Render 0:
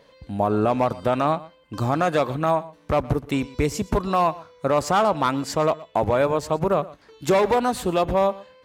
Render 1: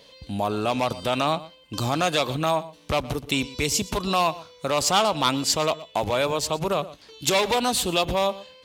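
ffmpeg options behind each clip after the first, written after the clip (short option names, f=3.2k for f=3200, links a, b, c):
-filter_complex "[0:a]acrossover=split=800[a][b];[a]alimiter=limit=-20dB:level=0:latency=1[c];[b]highshelf=f=2.3k:t=q:w=1.5:g=9[d];[c][d]amix=inputs=2:normalize=0"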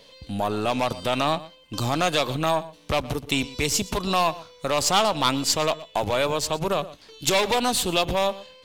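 -af "aeval=exprs='if(lt(val(0),0),0.708*val(0),val(0))':c=same,volume=1.5dB"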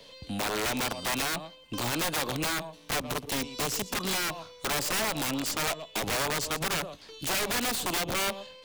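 -filter_complex "[0:a]acrossover=split=150|360|1000[a][b][c][d];[a]acompressor=threshold=-45dB:ratio=4[e];[b]acompressor=threshold=-35dB:ratio=4[f];[c]acompressor=threshold=-30dB:ratio=4[g];[d]acompressor=threshold=-31dB:ratio=4[h];[e][f][g][h]amix=inputs=4:normalize=0,aeval=exprs='(mod(15*val(0)+1,2)-1)/15':c=same"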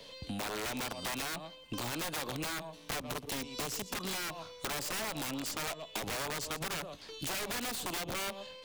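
-af "acompressor=threshold=-36dB:ratio=4"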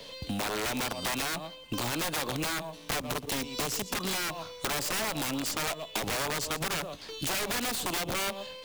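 -af "acrusher=bits=5:mode=log:mix=0:aa=0.000001,volume=5.5dB"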